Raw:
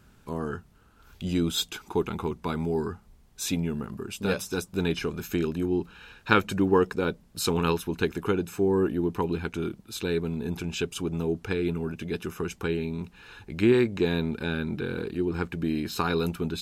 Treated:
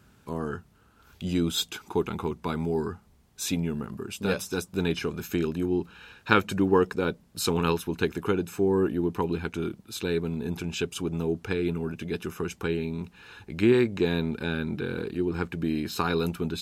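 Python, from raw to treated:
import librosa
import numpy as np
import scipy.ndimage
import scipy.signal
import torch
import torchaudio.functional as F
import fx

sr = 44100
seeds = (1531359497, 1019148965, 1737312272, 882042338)

y = scipy.signal.sosfilt(scipy.signal.butter(2, 59.0, 'highpass', fs=sr, output='sos'), x)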